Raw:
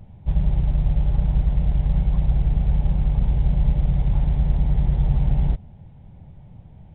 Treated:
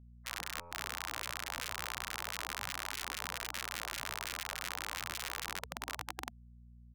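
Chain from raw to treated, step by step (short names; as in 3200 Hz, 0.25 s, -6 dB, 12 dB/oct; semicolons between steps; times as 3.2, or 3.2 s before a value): low shelf 150 Hz -8 dB; notches 50/100/150/200/250 Hz; feedback echo 0.77 s, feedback 40%, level -19 dB; compressor 16:1, threshold -35 dBFS, peak gain reduction 14.5 dB; Schmitt trigger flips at -37.5 dBFS; spectral gate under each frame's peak -30 dB weak; bell 100 Hz +12.5 dB 2.5 oct; buzz 60 Hz, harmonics 4, -74 dBFS -7 dB/oct; stuck buffer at 0.6, samples 512, times 9; gain +18 dB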